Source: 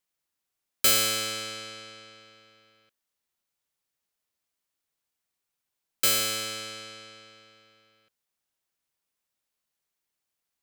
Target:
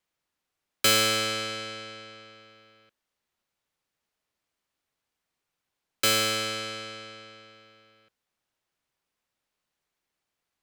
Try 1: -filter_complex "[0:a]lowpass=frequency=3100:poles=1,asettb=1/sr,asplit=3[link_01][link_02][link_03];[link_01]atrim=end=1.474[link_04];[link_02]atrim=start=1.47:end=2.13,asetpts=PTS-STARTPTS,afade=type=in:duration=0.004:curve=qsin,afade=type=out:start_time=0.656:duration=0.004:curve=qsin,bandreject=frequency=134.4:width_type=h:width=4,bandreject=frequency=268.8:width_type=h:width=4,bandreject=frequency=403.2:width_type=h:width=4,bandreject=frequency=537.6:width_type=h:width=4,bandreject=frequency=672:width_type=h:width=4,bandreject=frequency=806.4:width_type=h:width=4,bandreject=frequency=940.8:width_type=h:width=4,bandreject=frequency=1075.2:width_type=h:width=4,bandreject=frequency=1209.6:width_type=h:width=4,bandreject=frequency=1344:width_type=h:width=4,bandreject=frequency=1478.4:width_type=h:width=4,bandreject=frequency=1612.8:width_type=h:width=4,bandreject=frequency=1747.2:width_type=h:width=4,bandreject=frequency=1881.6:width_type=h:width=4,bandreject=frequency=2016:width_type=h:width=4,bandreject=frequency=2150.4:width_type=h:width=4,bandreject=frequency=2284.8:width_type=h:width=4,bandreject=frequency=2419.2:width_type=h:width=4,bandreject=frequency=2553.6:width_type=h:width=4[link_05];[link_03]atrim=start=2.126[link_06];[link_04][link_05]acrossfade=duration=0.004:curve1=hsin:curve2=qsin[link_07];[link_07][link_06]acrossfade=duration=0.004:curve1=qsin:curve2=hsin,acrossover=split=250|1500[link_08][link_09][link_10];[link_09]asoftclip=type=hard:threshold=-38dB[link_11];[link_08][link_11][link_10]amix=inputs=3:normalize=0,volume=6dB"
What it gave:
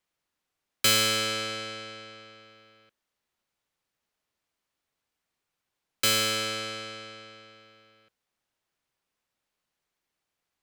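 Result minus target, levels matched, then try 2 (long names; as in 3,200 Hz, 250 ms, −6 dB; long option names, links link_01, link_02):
hard clipping: distortion +12 dB
-filter_complex "[0:a]lowpass=frequency=3100:poles=1,asettb=1/sr,asplit=3[link_01][link_02][link_03];[link_01]atrim=end=1.474[link_04];[link_02]atrim=start=1.47:end=2.13,asetpts=PTS-STARTPTS,afade=type=in:duration=0.004:curve=qsin,afade=type=out:start_time=0.656:duration=0.004:curve=qsin,bandreject=frequency=134.4:width_type=h:width=4,bandreject=frequency=268.8:width_type=h:width=4,bandreject=frequency=403.2:width_type=h:width=4,bandreject=frequency=537.6:width_type=h:width=4,bandreject=frequency=672:width_type=h:width=4,bandreject=frequency=806.4:width_type=h:width=4,bandreject=frequency=940.8:width_type=h:width=4,bandreject=frequency=1075.2:width_type=h:width=4,bandreject=frequency=1209.6:width_type=h:width=4,bandreject=frequency=1344:width_type=h:width=4,bandreject=frequency=1478.4:width_type=h:width=4,bandreject=frequency=1612.8:width_type=h:width=4,bandreject=frequency=1747.2:width_type=h:width=4,bandreject=frequency=1881.6:width_type=h:width=4,bandreject=frequency=2016:width_type=h:width=4,bandreject=frequency=2150.4:width_type=h:width=4,bandreject=frequency=2284.8:width_type=h:width=4,bandreject=frequency=2419.2:width_type=h:width=4,bandreject=frequency=2553.6:width_type=h:width=4[link_05];[link_03]atrim=start=2.126[link_06];[link_04][link_05]acrossfade=duration=0.004:curve1=hsin:curve2=qsin[link_07];[link_07][link_06]acrossfade=duration=0.004:curve1=qsin:curve2=hsin,acrossover=split=250|1500[link_08][link_09][link_10];[link_09]asoftclip=type=hard:threshold=-30dB[link_11];[link_08][link_11][link_10]amix=inputs=3:normalize=0,volume=6dB"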